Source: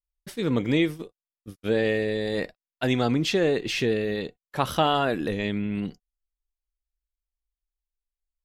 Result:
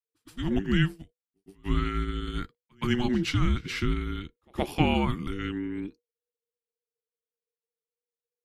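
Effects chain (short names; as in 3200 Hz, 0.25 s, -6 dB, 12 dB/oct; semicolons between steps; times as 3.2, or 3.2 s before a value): frequency shift -490 Hz; reverse echo 0.12 s -21.5 dB; upward expander 1.5:1, over -44 dBFS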